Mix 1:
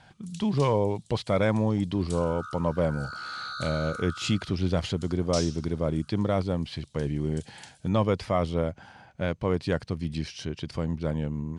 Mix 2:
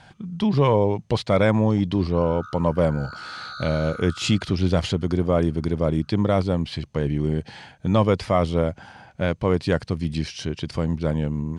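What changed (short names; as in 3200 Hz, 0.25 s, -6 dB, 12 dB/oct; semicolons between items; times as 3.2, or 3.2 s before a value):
speech +5.5 dB; first sound: muted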